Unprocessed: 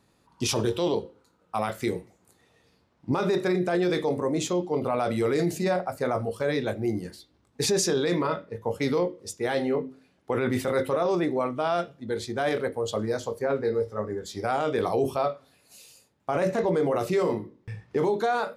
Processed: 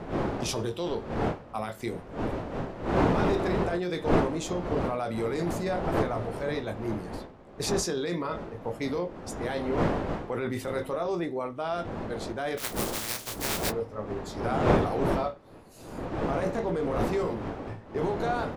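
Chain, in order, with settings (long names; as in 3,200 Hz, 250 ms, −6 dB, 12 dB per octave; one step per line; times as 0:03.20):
0:12.57–0:13.69: compressing power law on the bin magnitudes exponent 0.13
wind on the microphone 570 Hz −27 dBFS
double-tracking delay 18 ms −12.5 dB
level −5.5 dB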